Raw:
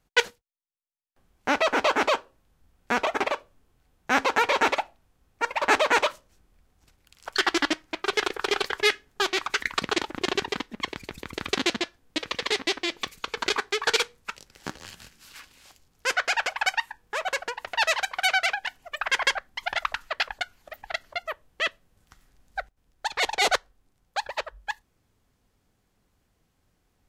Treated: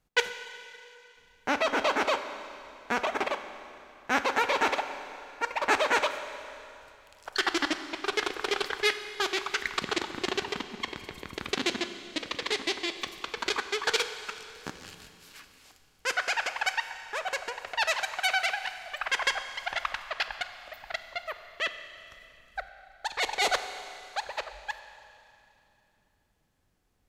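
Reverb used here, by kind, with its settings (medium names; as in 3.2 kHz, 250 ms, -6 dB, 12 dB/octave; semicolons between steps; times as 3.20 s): Schroeder reverb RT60 2.8 s, combs from 31 ms, DRR 9.5 dB; trim -4 dB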